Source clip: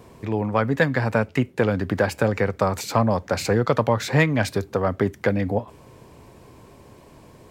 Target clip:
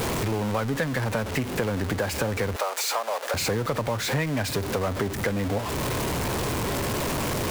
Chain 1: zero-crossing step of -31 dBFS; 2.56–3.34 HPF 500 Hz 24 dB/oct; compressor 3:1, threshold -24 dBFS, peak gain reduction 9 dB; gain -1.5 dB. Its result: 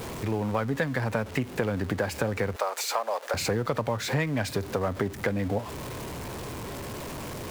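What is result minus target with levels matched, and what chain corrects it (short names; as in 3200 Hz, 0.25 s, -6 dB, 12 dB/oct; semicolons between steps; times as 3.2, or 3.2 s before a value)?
zero-crossing step: distortion -9 dB
zero-crossing step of -19.5 dBFS; 2.56–3.34 HPF 500 Hz 24 dB/oct; compressor 3:1, threshold -24 dBFS, peak gain reduction 10 dB; gain -1.5 dB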